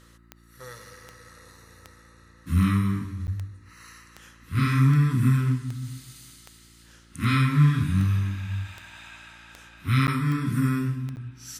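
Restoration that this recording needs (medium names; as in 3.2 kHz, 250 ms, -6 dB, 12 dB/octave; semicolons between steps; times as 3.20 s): de-click; de-hum 57.3 Hz, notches 6; interpolate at 3.27/10.07/11.16 s, 9.4 ms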